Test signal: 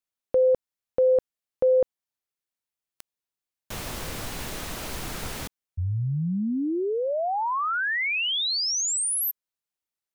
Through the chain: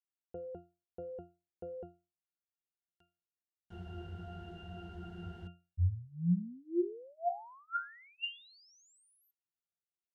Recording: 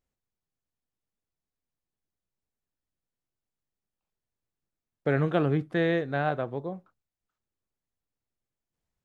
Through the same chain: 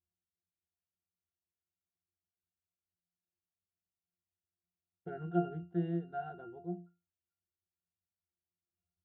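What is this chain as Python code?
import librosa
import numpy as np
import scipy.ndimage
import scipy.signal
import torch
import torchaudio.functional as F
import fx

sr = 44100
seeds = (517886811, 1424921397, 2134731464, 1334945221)

y = fx.octave_resonator(x, sr, note='F', decay_s=0.29)
y = F.gain(torch.from_numpy(y), 3.0).numpy()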